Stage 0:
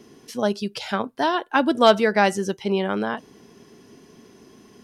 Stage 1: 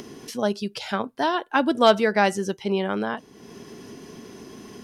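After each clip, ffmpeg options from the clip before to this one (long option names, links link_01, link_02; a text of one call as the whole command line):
ffmpeg -i in.wav -af "acompressor=mode=upward:threshold=-30dB:ratio=2.5,volume=-1.5dB" out.wav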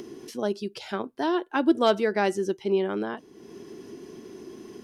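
ffmpeg -i in.wav -af "equalizer=frequency=350:width_type=o:width=0.48:gain=12,volume=-6.5dB" out.wav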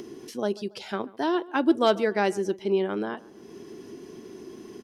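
ffmpeg -i in.wav -filter_complex "[0:a]asplit=2[link_01][link_02];[link_02]adelay=140,lowpass=frequency=1900:poles=1,volume=-20.5dB,asplit=2[link_03][link_04];[link_04]adelay=140,lowpass=frequency=1900:poles=1,volume=0.45,asplit=2[link_05][link_06];[link_06]adelay=140,lowpass=frequency=1900:poles=1,volume=0.45[link_07];[link_01][link_03][link_05][link_07]amix=inputs=4:normalize=0" out.wav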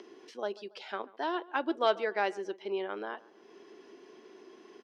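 ffmpeg -i in.wav -af "highpass=520,lowpass=3800,volume=-3.5dB" out.wav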